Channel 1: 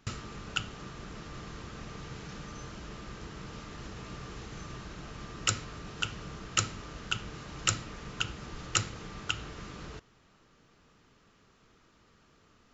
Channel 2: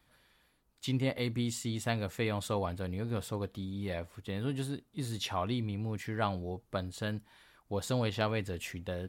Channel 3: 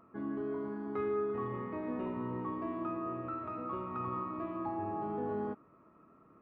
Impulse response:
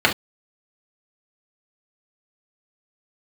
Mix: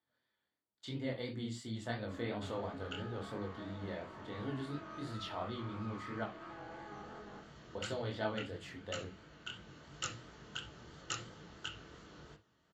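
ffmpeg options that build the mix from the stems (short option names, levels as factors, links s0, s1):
-filter_complex "[0:a]highpass=58,adelay=2350,volume=0.299,asplit=2[s0][s1];[s1]volume=0.1[s2];[1:a]agate=range=0.251:threshold=0.00112:ratio=16:detection=peak,volume=0.596,asplit=3[s3][s4][s5];[s3]atrim=end=6.24,asetpts=PTS-STARTPTS,afade=t=out:st=6.236:d=0.004:c=hsin[s6];[s4]atrim=start=6.24:end=7.75,asetpts=PTS-STARTPTS,volume=0[s7];[s5]atrim=start=7.75,asetpts=PTS-STARTPTS,afade=t=in:d=0.004:c=hsin[s8];[s6][s7][s8]concat=n=3:v=0:a=1,asplit=3[s9][s10][s11];[s10]volume=0.075[s12];[2:a]tiltshelf=f=680:g=-5,alimiter=level_in=3.16:limit=0.0631:level=0:latency=1,volume=0.316,aeval=exprs='max(val(0),0)':c=same,adelay=1850,volume=0.631,asplit=2[s13][s14];[s14]volume=0.0944[s15];[s11]apad=whole_len=665152[s16];[s0][s16]sidechaincompress=threshold=0.00447:ratio=8:attack=16:release=1310[s17];[s9][s13]amix=inputs=2:normalize=0,highpass=210,lowpass=5400,acompressor=threshold=0.00631:ratio=1.5,volume=1[s18];[3:a]atrim=start_sample=2205[s19];[s2][s12][s15]amix=inputs=3:normalize=0[s20];[s20][s19]afir=irnorm=-1:irlink=0[s21];[s17][s18][s21]amix=inputs=3:normalize=0,flanger=delay=18.5:depth=7.3:speed=2.9"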